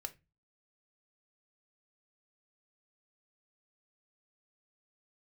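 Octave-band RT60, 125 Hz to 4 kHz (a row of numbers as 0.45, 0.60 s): 0.45, 0.40, 0.25, 0.20, 0.25, 0.20 s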